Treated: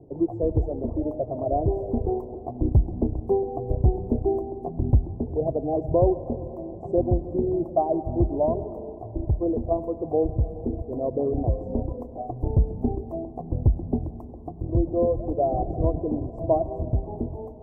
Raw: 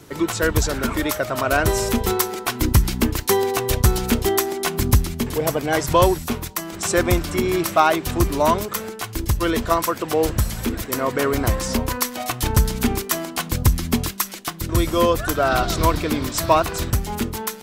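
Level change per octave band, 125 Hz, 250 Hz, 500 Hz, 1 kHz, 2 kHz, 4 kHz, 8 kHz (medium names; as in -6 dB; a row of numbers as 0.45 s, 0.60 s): -3.0 dB, -4.0 dB, -3.0 dB, -10.0 dB, under -40 dB, under -40 dB, under -40 dB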